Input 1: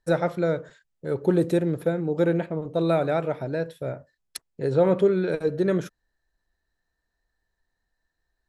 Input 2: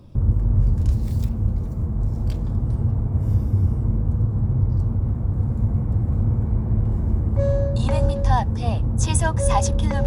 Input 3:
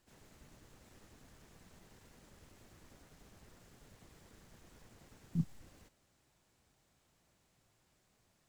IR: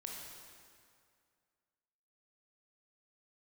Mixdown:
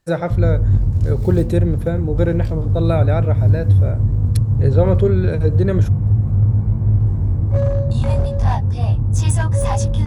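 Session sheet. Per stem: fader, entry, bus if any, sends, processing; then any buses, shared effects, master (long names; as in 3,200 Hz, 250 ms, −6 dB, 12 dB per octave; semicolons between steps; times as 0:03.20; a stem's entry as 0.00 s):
+2.0 dB, 0.00 s, no send, no processing
+1.5 dB, 0.15 s, no send, chorus effect 0.32 Hz, delay 19.5 ms, depth 2.3 ms; gain into a clipping stage and back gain 15.5 dB
−0.5 dB, 0.00 s, no send, no processing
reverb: not used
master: parametric band 110 Hz +8.5 dB 0.94 octaves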